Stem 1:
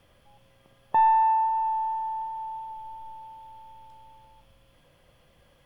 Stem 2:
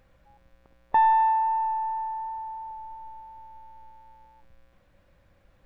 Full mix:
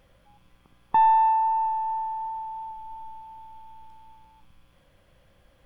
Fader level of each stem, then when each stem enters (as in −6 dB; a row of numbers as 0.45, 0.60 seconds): −3.5, −1.0 decibels; 0.00, 0.00 seconds